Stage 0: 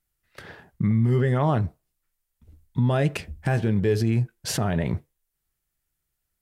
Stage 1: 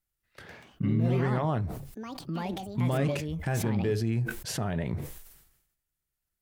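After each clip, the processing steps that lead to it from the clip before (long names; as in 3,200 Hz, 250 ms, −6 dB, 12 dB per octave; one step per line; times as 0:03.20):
delay with pitch and tempo change per echo 205 ms, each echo +5 semitones, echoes 2, each echo −6 dB
level that may fall only so fast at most 63 dB per second
level −6.5 dB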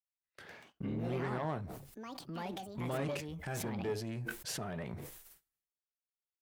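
one-sided soft clipper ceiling −25.5 dBFS
noise gate −54 dBFS, range −19 dB
low-shelf EQ 170 Hz −11 dB
level −3.5 dB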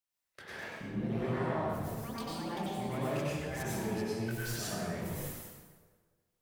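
in parallel at −3 dB: compressor whose output falls as the input rises −49 dBFS, ratio −1
on the sum: dense smooth reverb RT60 1.5 s, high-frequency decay 0.7×, pre-delay 85 ms, DRR −7.5 dB
level −6.5 dB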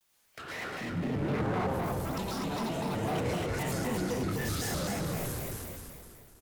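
echo with shifted repeats 244 ms, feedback 38%, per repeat −32 Hz, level −4.5 dB
power curve on the samples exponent 0.7
pitch modulation by a square or saw wave square 3.9 Hz, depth 250 cents
level −1.5 dB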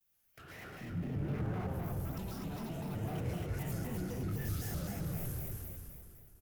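octave-band graphic EQ 250/500/1,000/2,000/4,000/8,000 Hz −7/−8/−11/−7/−11/−10 dB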